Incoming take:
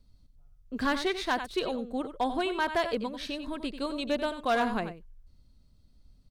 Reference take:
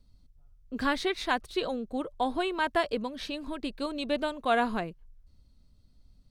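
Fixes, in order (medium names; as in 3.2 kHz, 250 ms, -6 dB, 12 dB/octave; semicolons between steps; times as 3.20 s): clip repair -20 dBFS; inverse comb 91 ms -10.5 dB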